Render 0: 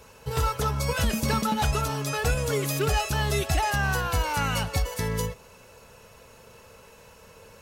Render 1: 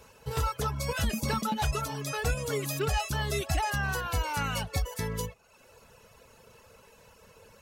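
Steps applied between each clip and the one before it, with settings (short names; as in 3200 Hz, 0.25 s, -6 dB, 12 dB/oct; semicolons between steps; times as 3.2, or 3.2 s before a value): reverb removal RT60 0.69 s; gain -3.5 dB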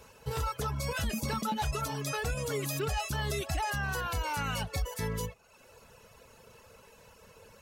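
limiter -24 dBFS, peak gain reduction 5.5 dB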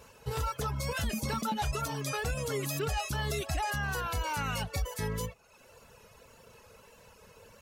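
wow and flutter 37 cents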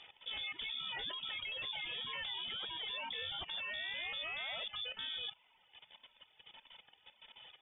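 level quantiser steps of 14 dB; inverted band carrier 3500 Hz; air absorption 110 m; gain +2 dB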